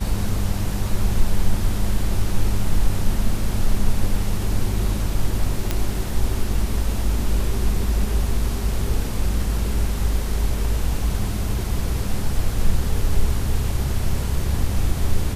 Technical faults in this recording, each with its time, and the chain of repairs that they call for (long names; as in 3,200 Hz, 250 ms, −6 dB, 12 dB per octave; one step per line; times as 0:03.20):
0:05.71: click −7 dBFS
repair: click removal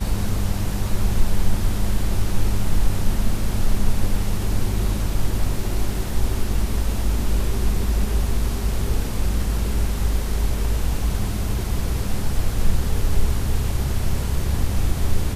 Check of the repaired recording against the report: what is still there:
none of them is left